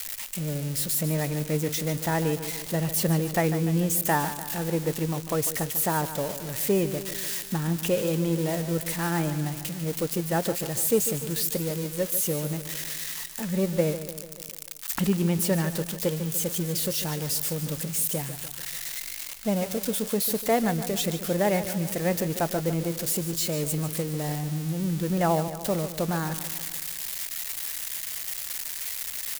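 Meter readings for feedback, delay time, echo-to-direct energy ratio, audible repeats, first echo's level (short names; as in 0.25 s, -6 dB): 57%, 0.147 s, -10.5 dB, 5, -12.0 dB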